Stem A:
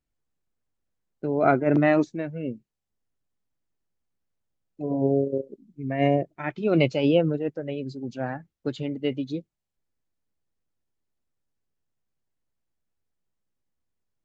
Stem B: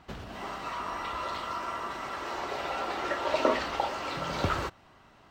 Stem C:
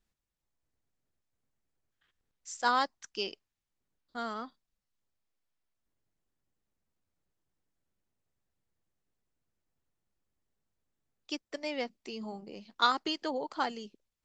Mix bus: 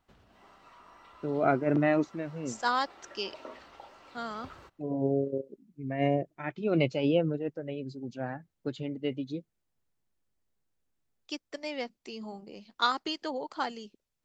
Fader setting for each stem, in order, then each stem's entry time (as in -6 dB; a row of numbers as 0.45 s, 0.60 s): -5.5 dB, -20.0 dB, -0.5 dB; 0.00 s, 0.00 s, 0.00 s